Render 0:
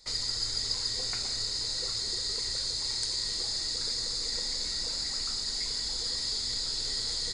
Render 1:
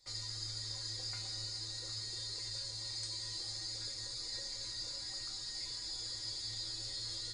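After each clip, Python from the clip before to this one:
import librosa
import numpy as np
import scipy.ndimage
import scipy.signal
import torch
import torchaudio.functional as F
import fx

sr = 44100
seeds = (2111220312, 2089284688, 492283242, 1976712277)

y = fx.comb_fb(x, sr, f0_hz=110.0, decay_s=0.23, harmonics='odd', damping=0.0, mix_pct=90)
y = y * 10.0 ** (1.0 / 20.0)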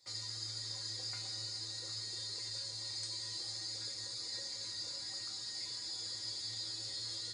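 y = scipy.signal.sosfilt(scipy.signal.butter(2, 110.0, 'highpass', fs=sr, output='sos'), x)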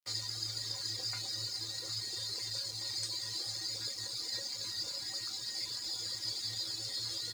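y = fx.dereverb_blind(x, sr, rt60_s=0.78)
y = np.sign(y) * np.maximum(np.abs(y) - 10.0 ** (-59.0 / 20.0), 0.0)
y = y * 10.0 ** (7.0 / 20.0)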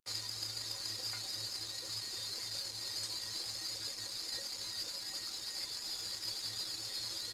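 y = fx.cvsd(x, sr, bps=64000)
y = fx.peak_eq(y, sr, hz=130.0, db=-6.0, octaves=0.56)
y = y * 10.0 ** (-2.5 / 20.0)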